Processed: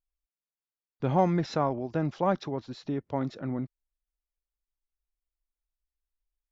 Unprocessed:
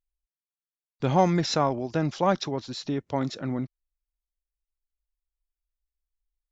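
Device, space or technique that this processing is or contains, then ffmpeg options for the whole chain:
through cloth: -af "highshelf=f=3.8k:g=-17,volume=-2.5dB"

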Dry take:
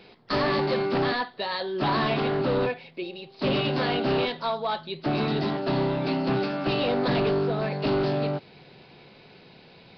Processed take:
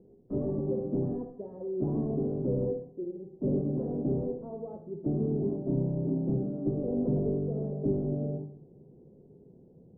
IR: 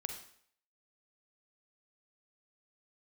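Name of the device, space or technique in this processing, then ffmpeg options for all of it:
next room: -filter_complex "[0:a]lowpass=f=440:w=0.5412,lowpass=f=440:w=1.3066[a];[1:a]atrim=start_sample=2205[b];[a][b]afir=irnorm=-1:irlink=0"

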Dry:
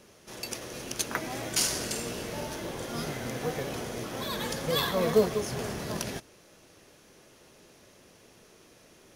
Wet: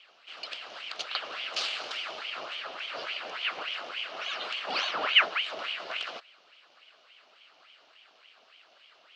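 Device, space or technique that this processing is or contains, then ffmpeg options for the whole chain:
voice changer toy: -filter_complex "[0:a]aeval=exprs='val(0)*sin(2*PI*1500*n/s+1500*0.85/3.5*sin(2*PI*3.5*n/s))':c=same,highpass=520,equalizer=f=640:t=q:w=4:g=5,equalizer=f=920:t=q:w=4:g=-5,equalizer=f=1.3k:t=q:w=4:g=4,equalizer=f=1.9k:t=q:w=4:g=-4,equalizer=f=2.9k:t=q:w=4:g=8,equalizer=f=4.4k:t=q:w=4:g=4,lowpass=f=4.6k:w=0.5412,lowpass=f=4.6k:w=1.3066,asettb=1/sr,asplit=3[a][b][c];[a]atrim=end=3.604[d];[b]atrim=start=3.6:end=4.86,asetpts=PTS-STARTPTS,afade=t=in:d=0.004:c=qsin,afade=t=out:st=1.256:d=0.004:c=qsin,highpass=120[e];[c]atrim=start=4.856[f];[d][e]acrossfade=d=0.004:c1=hsin:c2=qsin[g];[g][f]acrossfade=d=0.004:c1=qsin:c2=hsin"

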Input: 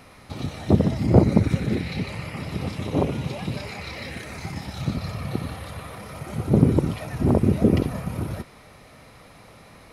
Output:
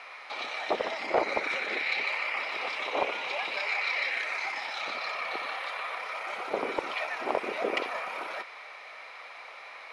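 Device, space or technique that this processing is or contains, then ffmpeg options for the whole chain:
intercom: -af "highpass=460,lowpass=3.6k,highpass=770,equalizer=f=2.3k:t=o:w=0.25:g=6,asoftclip=type=tanh:threshold=-21dB,volume=6.5dB"

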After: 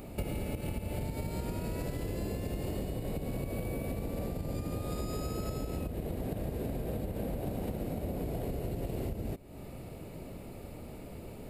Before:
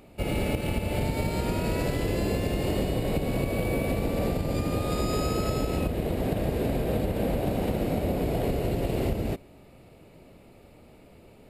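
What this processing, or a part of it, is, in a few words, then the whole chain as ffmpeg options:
ASMR close-microphone chain: -af "lowshelf=f=240:g=4.5,acompressor=threshold=-38dB:ratio=8,equalizer=f=2.9k:t=o:w=1.7:g=-3,highshelf=f=8.2k:g=7,volume=5dB"

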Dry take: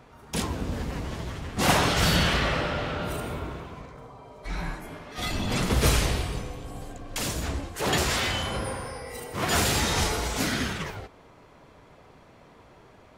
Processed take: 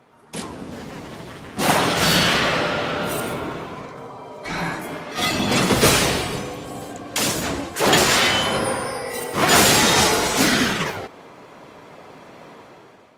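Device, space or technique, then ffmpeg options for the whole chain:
video call: -filter_complex "[0:a]asettb=1/sr,asplit=3[a][b][c];[a]atrim=end=2.104[d];[b]atrim=start=2.1:end=3.34,asetpts=PTS-STARTPTS,afade=t=in:d=0.004:c=qsin,afade=t=out:st=1.236:d=0.004:c=qsin,highshelf=f=5.4k:g=4.5[e];[c]atrim=start=3.336[f];[d][e]acrossfade=d=0.004:c1=hsin:c2=qsin[g];[g][f]acrossfade=d=0.004:c1=qsin:c2=hsin,highpass=170,dynaudnorm=f=960:g=3:m=13dB" -ar 48000 -c:a libopus -b:a 32k

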